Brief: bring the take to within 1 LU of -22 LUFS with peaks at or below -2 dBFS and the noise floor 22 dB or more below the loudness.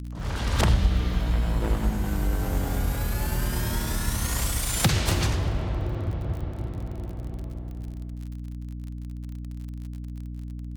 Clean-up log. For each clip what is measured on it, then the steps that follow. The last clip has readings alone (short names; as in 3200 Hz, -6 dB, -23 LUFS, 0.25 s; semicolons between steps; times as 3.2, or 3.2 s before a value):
ticks 32/s; hum 60 Hz; harmonics up to 300 Hz; hum level -32 dBFS; loudness -28.5 LUFS; peak -8.5 dBFS; loudness target -22.0 LUFS
-> de-click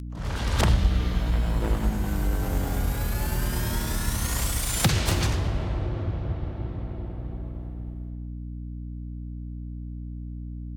ticks 0.37/s; hum 60 Hz; harmonics up to 300 Hz; hum level -32 dBFS
-> notches 60/120/180/240/300 Hz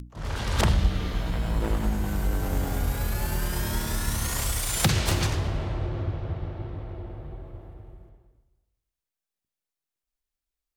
hum none; loudness -28.0 LUFS; peak -9.0 dBFS; loudness target -22.0 LUFS
-> gain +6 dB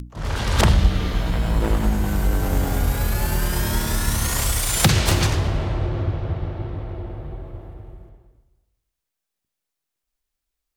loudness -22.0 LUFS; peak -3.0 dBFS; noise floor -83 dBFS